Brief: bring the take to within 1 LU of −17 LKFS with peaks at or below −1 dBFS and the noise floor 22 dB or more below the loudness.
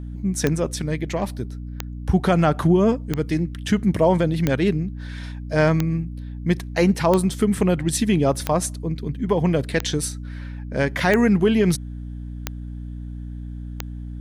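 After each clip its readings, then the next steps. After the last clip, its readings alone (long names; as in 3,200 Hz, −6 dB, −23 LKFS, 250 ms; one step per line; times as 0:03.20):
number of clicks 11; mains hum 60 Hz; hum harmonics up to 300 Hz; level of the hum −30 dBFS; integrated loudness −21.5 LKFS; sample peak −4.0 dBFS; target loudness −17.0 LKFS
→ click removal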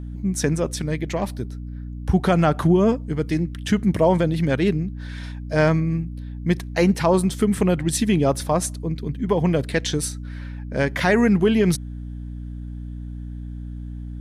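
number of clicks 0; mains hum 60 Hz; hum harmonics up to 300 Hz; level of the hum −30 dBFS
→ hum removal 60 Hz, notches 5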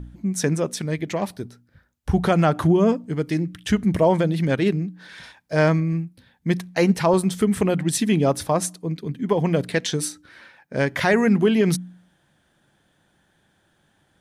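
mains hum none found; integrated loudness −22.0 LKFS; sample peak −6.5 dBFS; target loudness −17.0 LKFS
→ level +5 dB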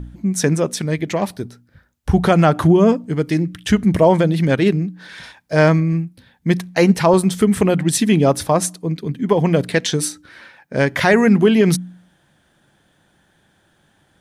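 integrated loudness −17.0 LKFS; sample peak −1.5 dBFS; background noise floor −60 dBFS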